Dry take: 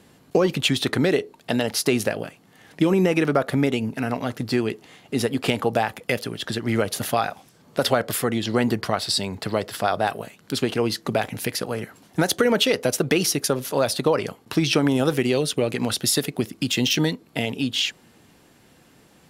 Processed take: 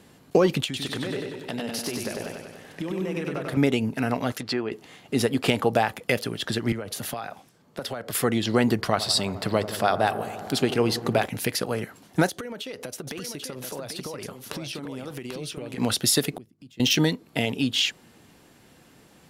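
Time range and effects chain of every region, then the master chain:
0:00.64–0:03.57: downward compressor 4 to 1, threshold −30 dBFS + feedback echo with a swinging delay time 96 ms, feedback 64%, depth 56 cents, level −3.5 dB
0:04.32–0:04.72: treble cut that deepens with the level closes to 1,300 Hz, closed at −21.5 dBFS + spectral tilt +3.5 dB per octave
0:06.72–0:08.15: downward compressor 8 to 1, threshold −28 dBFS + multiband upward and downward expander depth 40%
0:08.79–0:11.25: upward compression, threshold −33 dBFS + delay with a low-pass on its return 86 ms, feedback 83%, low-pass 1,200 Hz, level −13.5 dB
0:12.28–0:15.78: downward compressor 16 to 1, threshold −31 dBFS + single-tap delay 790 ms −6 dB
0:16.33–0:16.80: low-shelf EQ 490 Hz +11 dB + mains-hum notches 50/100/150 Hz + gate with flip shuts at −22 dBFS, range −31 dB
whole clip: no processing

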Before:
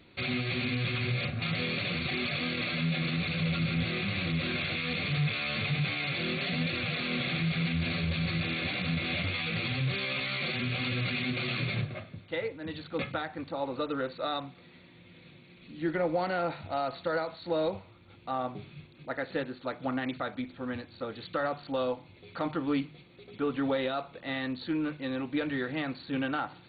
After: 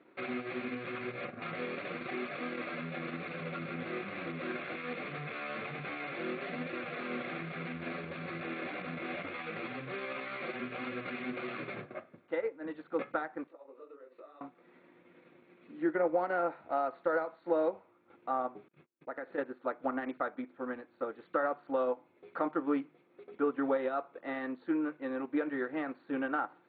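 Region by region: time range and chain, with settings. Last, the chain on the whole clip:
0:13.47–0:14.41: downward compressor 10 to 1, threshold −42 dBFS + loudspeaker in its box 370–3,900 Hz, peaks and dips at 410 Hz +5 dB, 820 Hz −9 dB, 1,500 Hz −9 dB, 2,700 Hz +3 dB + micro pitch shift up and down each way 43 cents
0:18.68–0:19.38: noise gate −50 dBFS, range −30 dB + downward compressor 5 to 1, threshold −35 dBFS
whole clip: Chebyshev band-pass filter 320–1,500 Hz, order 2; transient designer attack +2 dB, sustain −6 dB

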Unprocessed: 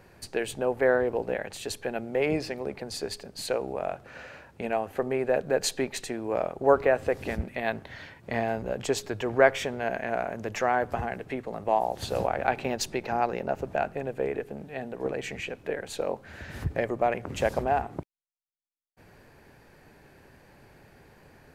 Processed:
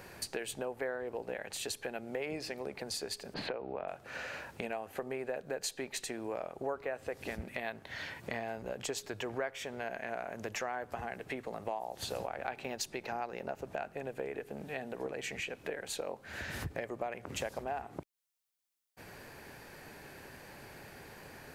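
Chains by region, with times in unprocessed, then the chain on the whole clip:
0:03.34–0:03.88: high-frequency loss of the air 360 metres + multiband upward and downward compressor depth 70%
whole clip: spectral tilt +1.5 dB per octave; downward compressor 4 to 1, threshold −43 dBFS; level +5 dB

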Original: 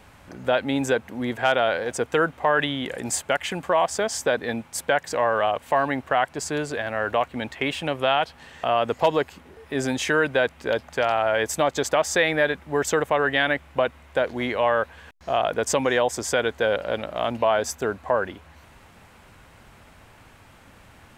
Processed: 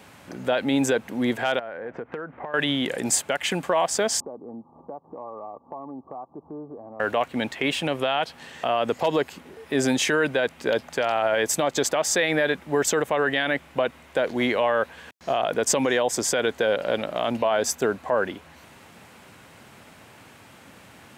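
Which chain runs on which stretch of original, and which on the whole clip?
0:01.59–0:02.54: low-pass filter 2,000 Hz 24 dB per octave + downward compressor 10 to 1, threshold −33 dBFS
0:04.20–0:07.00: Chebyshev low-pass with heavy ripple 1,200 Hz, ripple 6 dB + downward compressor 2 to 1, threshold −47 dBFS
whole clip: high-pass filter 150 Hz 12 dB per octave; brickwall limiter −15 dBFS; parametric band 1,100 Hz −3.5 dB 2.2 octaves; level +5 dB

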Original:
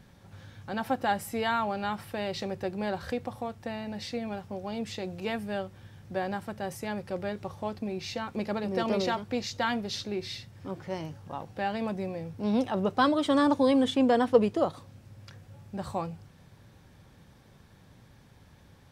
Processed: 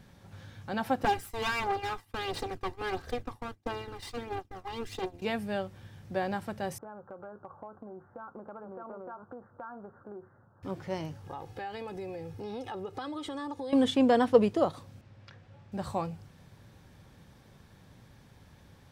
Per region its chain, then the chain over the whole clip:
0:01.04–0:05.22: lower of the sound and its delayed copy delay 2.5 ms + downward expander −38 dBFS + phase shifter 1.5 Hz, delay 1.1 ms, feedback 43%
0:06.78–0:10.63: Butterworth low-pass 1,500 Hz 96 dB per octave + spectral tilt +4.5 dB per octave + downward compressor, threshold −40 dBFS
0:11.24–0:13.73: comb filter 2.4 ms, depth 64% + downward compressor 5 to 1, threshold −36 dBFS
0:15.01–0:15.72: low-pass filter 3,900 Hz + low-shelf EQ 340 Hz −5.5 dB
whole clip: no processing

